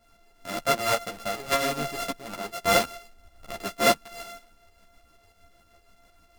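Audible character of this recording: a buzz of ramps at a fixed pitch in blocks of 64 samples; tremolo saw up 6.4 Hz, depth 55%; a shimmering, thickened sound

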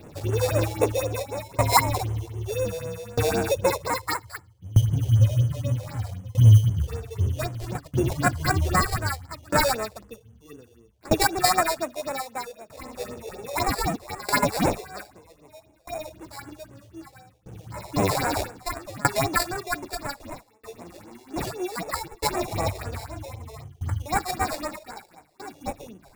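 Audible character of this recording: aliases and images of a low sample rate 3.1 kHz, jitter 0%; phasing stages 4, 3.9 Hz, lowest notch 200–4600 Hz; tremolo saw down 0.63 Hz, depth 95%

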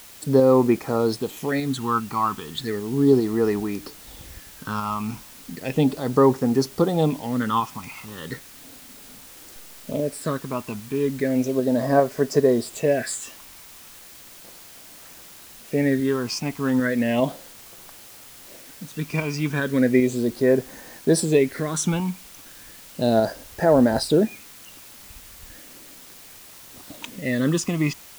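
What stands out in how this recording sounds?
tremolo saw up 2.5 Hz, depth 35%; phasing stages 8, 0.35 Hz, lowest notch 510–3400 Hz; a quantiser's noise floor 8-bit, dither triangular

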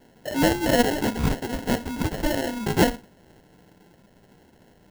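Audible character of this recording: phasing stages 12, 1.4 Hz, lowest notch 560–1200 Hz; aliases and images of a low sample rate 1.2 kHz, jitter 0%

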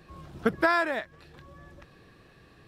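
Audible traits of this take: noise floor -57 dBFS; spectral tilt -3.0 dB/octave

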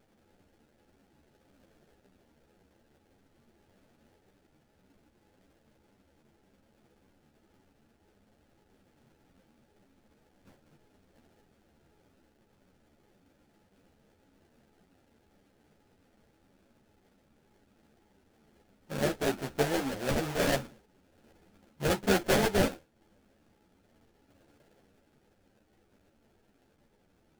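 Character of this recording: aliases and images of a low sample rate 1.1 kHz, jitter 20%; a shimmering, thickened sound

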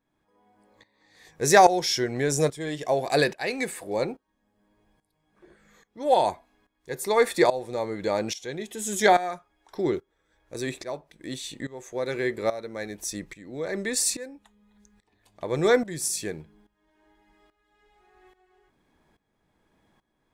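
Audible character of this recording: tremolo saw up 1.2 Hz, depth 85%

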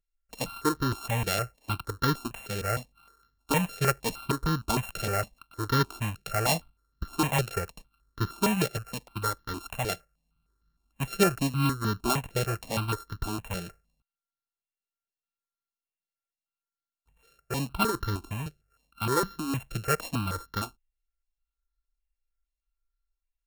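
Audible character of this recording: a buzz of ramps at a fixed pitch in blocks of 32 samples; notches that jump at a steady rate 6.5 Hz 270–2500 Hz

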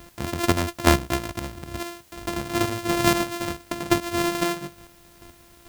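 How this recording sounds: a buzz of ramps at a fixed pitch in blocks of 128 samples; chopped level 2.3 Hz, depth 60%, duty 20%; a quantiser's noise floor 10-bit, dither triangular

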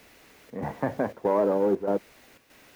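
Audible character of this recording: a quantiser's noise floor 10-bit, dither triangular; chopped level 1.6 Hz, depth 60%, duty 80%

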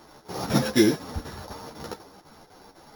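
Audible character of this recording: a buzz of ramps at a fixed pitch in blocks of 8 samples; chopped level 4 Hz, depth 60%, duty 80%; a shimmering, thickened sound

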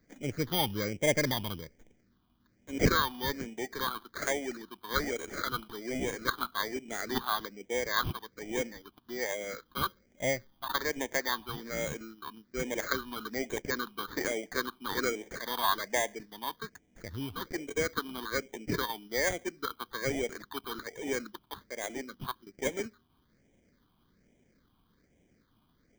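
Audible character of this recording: aliases and images of a low sample rate 2.7 kHz, jitter 0%; phasing stages 6, 1.2 Hz, lowest notch 520–1200 Hz

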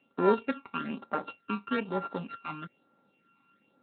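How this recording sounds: a buzz of ramps at a fixed pitch in blocks of 32 samples; phasing stages 12, 1.1 Hz, lowest notch 540–3000 Hz; a quantiser's noise floor 12-bit, dither none; Speex

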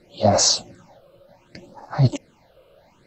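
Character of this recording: phasing stages 8, 0.66 Hz, lowest notch 240–3000 Hz

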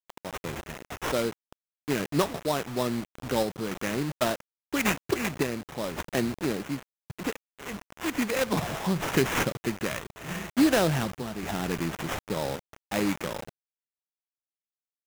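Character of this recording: a quantiser's noise floor 6-bit, dither none; random-step tremolo 3.5 Hz; aliases and images of a low sample rate 4.5 kHz, jitter 20%

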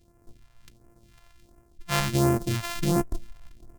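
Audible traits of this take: a buzz of ramps at a fixed pitch in blocks of 128 samples; phasing stages 2, 1.4 Hz, lowest notch 270–3600 Hz

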